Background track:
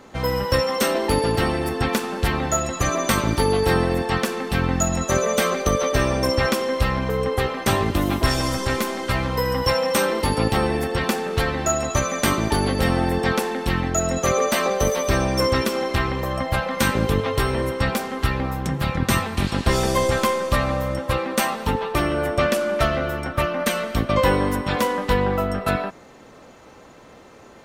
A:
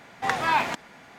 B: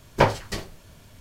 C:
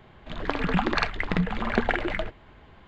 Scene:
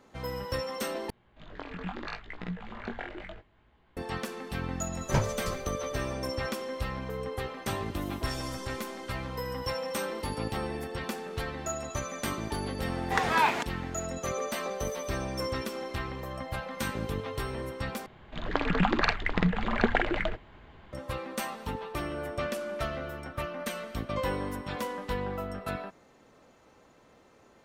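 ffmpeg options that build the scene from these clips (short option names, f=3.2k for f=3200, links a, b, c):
-filter_complex "[3:a]asplit=2[a][b];[0:a]volume=-13dB[c];[a]flanger=delay=16.5:depth=5.8:speed=0.74[d];[2:a]bass=f=250:g=12,treble=f=4k:g=8[e];[c]asplit=3[f][g][h];[f]atrim=end=1.104[i];[d]atrim=end=2.87,asetpts=PTS-STARTPTS,volume=-10.5dB[j];[g]atrim=start=3.966:end=18.064[k];[b]atrim=end=2.87,asetpts=PTS-STARTPTS,volume=-1dB[l];[h]atrim=start=20.926[m];[e]atrim=end=1.2,asetpts=PTS-STARTPTS,volume=-13.5dB,afade=t=in:d=0.004:c=hsin,afade=t=out:st=1.196:d=0.004:c=hsin,adelay=4940[n];[1:a]atrim=end=1.18,asetpts=PTS-STARTPTS,volume=-2dB,afade=t=in:d=0.004:c=hsin,afade=t=out:st=1.176:d=0.004:c=hsin,adelay=12880[o];[i][j]acrossfade=d=0.004:c1=hsin:c2=hsin[p];[p][k]acrossfade=d=0.004:c1=hsin:c2=hsin[q];[q][l]acrossfade=d=0.004:c1=hsin:c2=hsin[r];[r][m]acrossfade=d=0.004:c1=hsin:c2=hsin[s];[s][n][o]amix=inputs=3:normalize=0"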